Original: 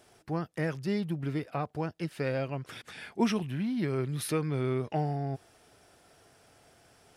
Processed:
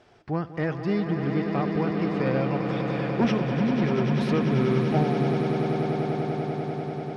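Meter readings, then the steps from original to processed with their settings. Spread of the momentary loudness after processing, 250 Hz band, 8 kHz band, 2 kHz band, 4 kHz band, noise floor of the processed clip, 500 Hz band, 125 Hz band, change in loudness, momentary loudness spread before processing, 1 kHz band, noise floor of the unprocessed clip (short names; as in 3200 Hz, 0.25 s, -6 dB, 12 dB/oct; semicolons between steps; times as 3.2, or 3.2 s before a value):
7 LU, +9.0 dB, n/a, +7.0 dB, +4.5 dB, -40 dBFS, +8.5 dB, +8.0 dB, +7.0 dB, 7 LU, +8.0 dB, -62 dBFS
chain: hard clip -22.5 dBFS, distortion -21 dB; air absorption 170 m; swelling echo 98 ms, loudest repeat 8, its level -9.5 dB; gain +5 dB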